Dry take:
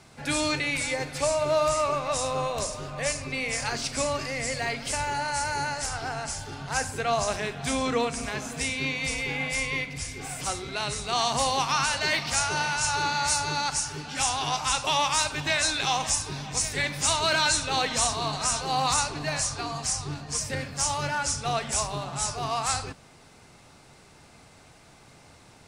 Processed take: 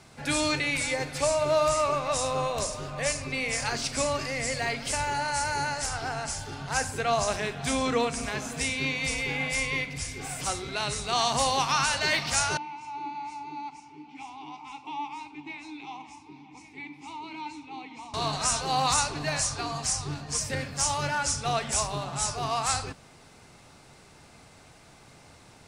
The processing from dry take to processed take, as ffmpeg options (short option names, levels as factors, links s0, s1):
-filter_complex "[0:a]asettb=1/sr,asplit=3[s0][s1][s2];[s0]atrim=end=12.574[s3];[s1]atrim=start=12.57:end=18.14,asetpts=PTS-STARTPTS,afade=t=in:d=0.004:c=qsin,afade=t=out:st=5.566:d=0.004:c=qsin,asplit=3[s4][s5][s6];[s4]bandpass=f=300:t=q:w=8,volume=1[s7];[s5]bandpass=f=870:t=q:w=8,volume=0.501[s8];[s6]bandpass=f=2240:t=q:w=8,volume=0.355[s9];[s7][s8][s9]amix=inputs=3:normalize=0[s10];[s2]atrim=start=18.136[s11];[s3][s10]acrossfade=d=0.004:c1=hsin:c2=qsin[s12];[s12][s11]acrossfade=d=0.004:c1=qsin:c2=hsin"